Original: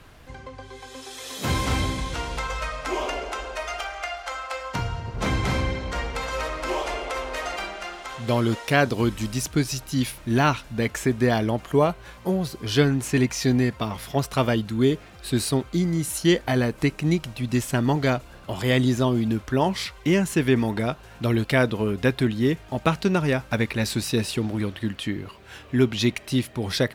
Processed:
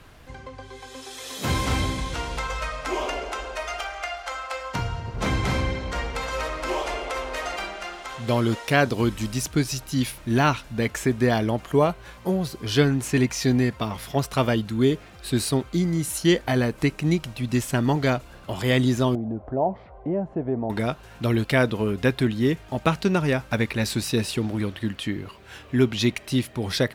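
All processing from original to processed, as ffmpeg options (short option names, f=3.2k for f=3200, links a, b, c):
-filter_complex "[0:a]asettb=1/sr,asplit=3[a][b][c];[a]atrim=end=19.154[d];[b]atrim=start=19.15:end=20.7,asetpts=PTS-STARTPTS,afade=t=in:d=0.004:c=qsin,afade=t=out:st=1.546:d=0.004:c=qsin,acompressor=threshold=-38dB:ratio=1.5:attack=3.2:release=140:knee=1:detection=peak,lowpass=f=690:t=q:w=4.5[e];[c]atrim=start=20.696[f];[d][e]acrossfade=d=0.004:c1=hsin:c2=qsin[g];[g][f]acrossfade=d=0.004:c1=qsin:c2=hsin"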